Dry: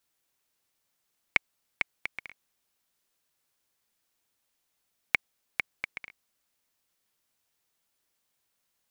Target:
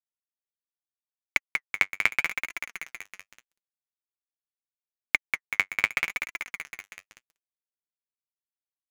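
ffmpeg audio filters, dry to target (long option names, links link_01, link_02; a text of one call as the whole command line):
ffmpeg -i in.wav -af "alimiter=limit=-16dB:level=0:latency=1:release=12,acontrast=85,equalizer=frequency=7300:width=0.97:gain=8,aecho=1:1:190|380|570|760|950|1140|1330|1520:0.473|0.284|0.17|0.102|0.0613|0.0368|0.0221|0.0132,dynaudnorm=framelen=120:gausssize=9:maxgain=12dB,adynamicequalizer=threshold=0.01:dfrequency=1300:dqfactor=1.4:tfrequency=1300:tqfactor=1.4:attack=5:release=100:ratio=0.375:range=2.5:mode=boostabove:tftype=bell,acrusher=bits=4:mix=0:aa=0.5,flanger=delay=2.9:depth=7.6:regen=42:speed=0.79:shape=sinusoidal,volume=1.5dB" out.wav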